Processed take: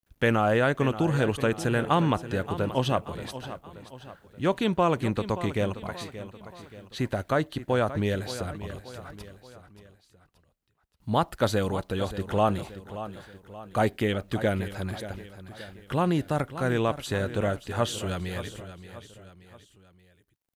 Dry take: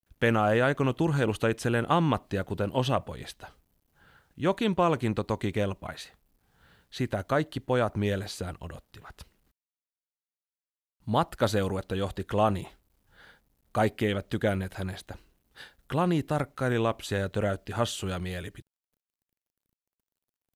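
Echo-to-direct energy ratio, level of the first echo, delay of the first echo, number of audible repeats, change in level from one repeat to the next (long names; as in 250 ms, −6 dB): −12.0 dB, −13.0 dB, 578 ms, 3, −6.5 dB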